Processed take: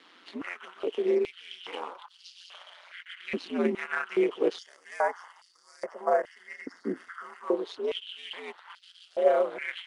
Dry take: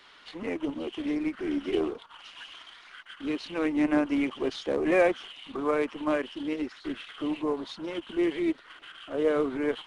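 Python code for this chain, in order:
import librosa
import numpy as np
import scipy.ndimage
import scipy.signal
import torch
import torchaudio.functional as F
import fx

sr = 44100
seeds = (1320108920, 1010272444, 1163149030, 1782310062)

y = fx.spec_box(x, sr, start_s=4.58, length_s=2.86, low_hz=2100.0, high_hz=4500.0, gain_db=-18)
y = y * np.sin(2.0 * np.pi * 89.0 * np.arange(len(y)) / sr)
y = fx.filter_held_highpass(y, sr, hz=2.4, low_hz=270.0, high_hz=4700.0)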